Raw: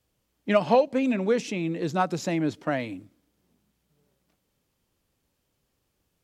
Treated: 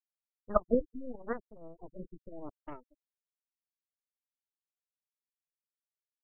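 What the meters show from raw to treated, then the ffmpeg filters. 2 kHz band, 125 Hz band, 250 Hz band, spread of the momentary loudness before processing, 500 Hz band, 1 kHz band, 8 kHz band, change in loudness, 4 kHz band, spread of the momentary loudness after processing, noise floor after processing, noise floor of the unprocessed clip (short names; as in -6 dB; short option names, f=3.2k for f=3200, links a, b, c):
-19.0 dB, -18.0 dB, -13.0 dB, 11 LU, -10.5 dB, -13.0 dB, under -35 dB, -9.5 dB, under -40 dB, 21 LU, under -85 dBFS, -76 dBFS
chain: -af "aeval=exprs='val(0)*gte(abs(val(0)),0.0075)':c=same,afftfilt=real='re*gte(hypot(re,im),0.2)':imag='im*gte(hypot(re,im),0.2)':win_size=1024:overlap=0.75,aeval=exprs='0.376*(cos(1*acos(clip(val(0)/0.376,-1,1)))-cos(1*PI/2))+0.119*(cos(2*acos(clip(val(0)/0.376,-1,1)))-cos(2*PI/2))+0.133*(cos(3*acos(clip(val(0)/0.376,-1,1)))-cos(3*PI/2))+0.0075*(cos(5*acos(clip(val(0)/0.376,-1,1)))-cos(5*PI/2))+0.0211*(cos(8*acos(clip(val(0)/0.376,-1,1)))-cos(8*PI/2))':c=same,afftfilt=real='re*lt(b*sr/1024,440*pow(3500/440,0.5+0.5*sin(2*PI*0.81*pts/sr)))':imag='im*lt(b*sr/1024,440*pow(3500/440,0.5+0.5*sin(2*PI*0.81*pts/sr)))':win_size=1024:overlap=0.75"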